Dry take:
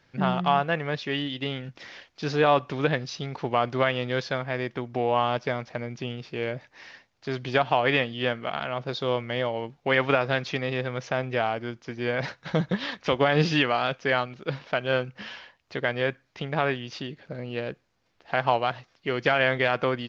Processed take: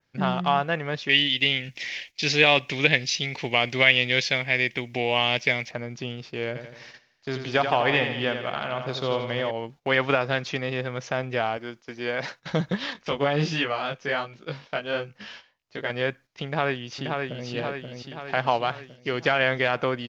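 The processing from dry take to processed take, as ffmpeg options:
-filter_complex "[0:a]asettb=1/sr,asplit=3[s0][s1][s2];[s0]atrim=end=1.094[s3];[s1]atrim=start=1.09:end=5.71,asetpts=PTS-STARTPTS,afade=t=in:d=0.004:c=qsin,afade=t=out:st=4.616:d=0.004:c=qsin,highshelf=f=1700:t=q:w=3:g=8.5[s4];[s2]atrim=start=5.706[s5];[s3][s4]acrossfade=d=0.004:c1=hsin:c2=qsin[s6];[s6][s5]acrossfade=d=0.004:c1=qsin:c2=hsin,asettb=1/sr,asplit=3[s7][s8][s9];[s7]atrim=end=6.474[s10];[s8]atrim=start=6.47:end=9.51,asetpts=PTS-STARTPTS,afade=t=in:d=0.004:c=qsin,afade=t=out:st=3.036:d=0.004:c=qsin,aecho=1:1:84|168|252|336|420|504|588:0.422|0.228|0.123|0.0664|0.0359|0.0194|0.0105,atrim=end_sample=134064[s11];[s9]atrim=start=9.506[s12];[s10][s11]acrossfade=d=0.004:c1=hsin:c2=qsin[s13];[s13][s12]acrossfade=d=0.004:c1=qsin:c2=hsin,asettb=1/sr,asplit=3[s14][s15][s16];[s14]atrim=end=11.574[s17];[s15]atrim=start=11.57:end=12.4,asetpts=PTS-STARTPTS,afade=t=in:d=0.004:c=qsin,afade=t=out:st=0.826:d=0.004:c=qsin,equalizer=f=61:w=0.52:g=-13.5[s18];[s16]atrim=start=12.396[s19];[s17][s18]acrossfade=d=0.004:c1=hsin:c2=qsin[s20];[s20][s19]acrossfade=d=0.004:c1=qsin:c2=hsin,asettb=1/sr,asplit=3[s21][s22][s23];[s21]atrim=end=12.934[s24];[s22]atrim=start=12.93:end=15.9,asetpts=PTS-STARTPTS,afade=t=in:d=0.004:c=qsin,afade=t=out:st=2.966:d=0.004:c=qsin,flanger=delay=18:depth=3.2:speed=1.4[s25];[s23]atrim=start=15.896[s26];[s24][s25]acrossfade=d=0.004:c1=hsin:c2=qsin[s27];[s27][s26]acrossfade=d=0.004:c1=qsin:c2=hsin,asplit=2[s28][s29];[s29]afade=t=in:st=16.45:d=0.01,afade=t=out:st=17.49:d=0.01,aecho=0:1:530|1060|1590|2120|2650|3180|3710|4240|4770:0.630957|0.378574|0.227145|0.136287|0.0817721|0.0490632|0.0294379|0.0176628|0.0105977[s30];[s28][s30]amix=inputs=2:normalize=0,adynamicequalizer=threshold=0.00447:dfrequency=4500:dqfactor=1.4:tfrequency=4500:tqfactor=1.4:attack=5:release=100:ratio=0.375:range=2:mode=cutabove:tftype=bell,agate=range=0.282:threshold=0.00562:ratio=16:detection=peak,aemphasis=mode=production:type=cd"

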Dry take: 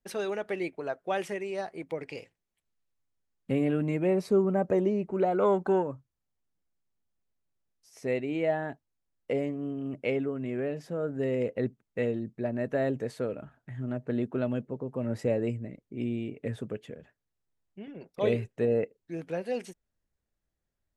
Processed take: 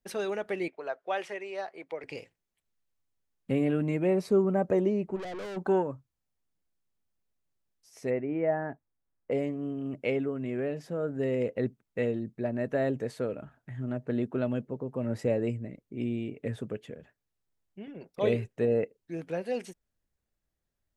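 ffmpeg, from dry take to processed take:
-filter_complex "[0:a]asettb=1/sr,asplit=3[s0][s1][s2];[s0]atrim=end=0.684[s3];[s1]atrim=start=0.68:end=2.04,asetpts=PTS-STARTPTS,afade=t=in:d=0.004:c=qsin,afade=t=out:st=1.356:d=0.004:c=qsin,acrossover=split=400 5700:gain=0.158 1 0.251[s4][s5][s6];[s4][s5][s6]amix=inputs=3:normalize=0[s7];[s2]atrim=start=2.036[s8];[s3][s7]acrossfade=d=0.004:c1=hsin:c2=qsin[s9];[s9][s8]acrossfade=d=0.004:c1=qsin:c2=hsin,asplit=3[s10][s11][s12];[s10]afade=t=out:st=5.15:d=0.02[s13];[s11]aeval=exprs='(tanh(70.8*val(0)+0.35)-tanh(0.35))/70.8':c=same,afade=t=in:st=5.15:d=0.02,afade=t=out:st=5.56:d=0.02[s14];[s12]afade=t=in:st=5.56:d=0.02[s15];[s13][s14][s15]amix=inputs=3:normalize=0,asplit=3[s16][s17][s18];[s16]afade=t=out:st=8.09:d=0.02[s19];[s17]lowpass=f=1900:w=0.5412,lowpass=f=1900:w=1.3066,afade=t=in:st=8.09:d=0.02,afade=t=out:st=9.31:d=0.02[s20];[s18]afade=t=in:st=9.31:d=0.02[s21];[s19][s20][s21]amix=inputs=3:normalize=0"

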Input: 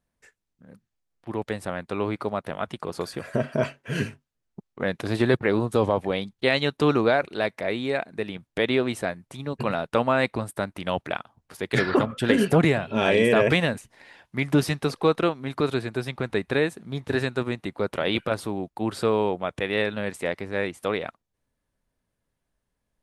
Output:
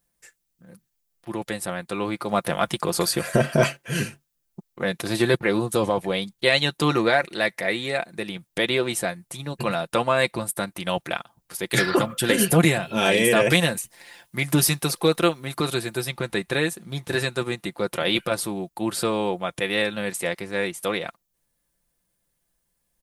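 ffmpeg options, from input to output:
-filter_complex "[0:a]asettb=1/sr,asplit=3[s0][s1][s2];[s0]atrim=end=2.294[s3];[s1]atrim=start=2.29:end=3.77,asetpts=PTS-STARTPTS,afade=t=in:d=0.004:c=qsin,afade=t=out:st=1.476:d=0.004:c=qsin,acontrast=69[s4];[s2]atrim=start=3.766[s5];[s3][s4]acrossfade=d=0.004:c1=hsin:c2=qsin[s6];[s6][s5]acrossfade=d=0.004:c1=qsin:c2=hsin,asettb=1/sr,asplit=3[s7][s8][s9];[s7]atrim=end=6.914[s10];[s8]atrim=start=6.91:end=7.91,asetpts=PTS-STARTPTS,afade=t=in:d=0.004:c=qsin,afade=t=out:st=0.996:d=0.004:c=qsin,equalizer=f=1900:w=5.2:g=8[s11];[s9]atrim=start=7.906[s12];[s10][s11]acrossfade=d=0.004:c1=hsin:c2=qsin[s13];[s13][s12]acrossfade=d=0.004:c1=qsin:c2=hsin,asettb=1/sr,asplit=3[s14][s15][s16];[s14]atrim=end=11.694[s17];[s15]atrim=start=11.69:end=16.06,asetpts=PTS-STARTPTS,afade=t=in:d=0.004:c=qsin,afade=t=out:st=4.366:d=0.004:c=qsin,highshelf=f=11000:g=9.5[s18];[s16]atrim=start=16.056[s19];[s17][s18]acrossfade=d=0.004:c1=hsin:c2=qsin[s20];[s20][s19]acrossfade=d=0.004:c1=qsin:c2=hsin,aemphasis=mode=production:type=75kf,aecho=1:1:5.8:0.53,volume=0.891"

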